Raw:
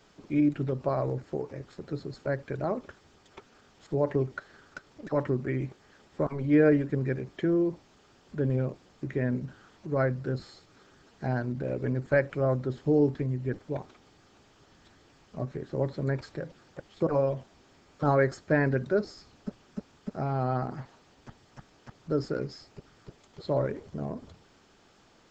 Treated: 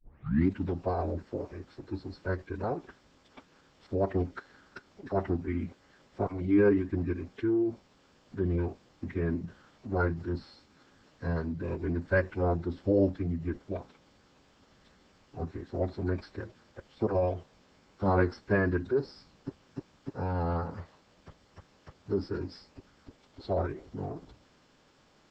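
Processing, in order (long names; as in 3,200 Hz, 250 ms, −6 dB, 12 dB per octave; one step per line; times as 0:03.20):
turntable start at the beginning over 0.49 s
phase-vocoder pitch shift with formants kept −7 semitones
level −1.5 dB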